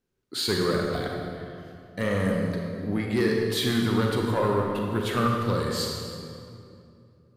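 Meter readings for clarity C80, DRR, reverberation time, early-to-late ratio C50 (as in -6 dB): 2.0 dB, -0.5 dB, 2.6 s, 0.5 dB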